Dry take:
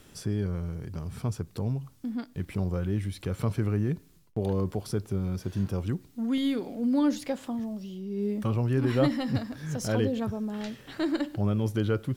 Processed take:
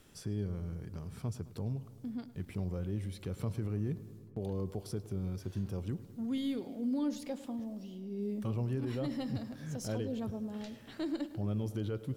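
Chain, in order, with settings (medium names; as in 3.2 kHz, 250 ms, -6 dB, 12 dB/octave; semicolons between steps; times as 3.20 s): dynamic bell 1.5 kHz, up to -6 dB, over -47 dBFS, Q 0.92; peak limiter -20.5 dBFS, peak gain reduction 7.5 dB; filtered feedback delay 106 ms, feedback 75%, low-pass 3.4 kHz, level -17 dB; trim -7 dB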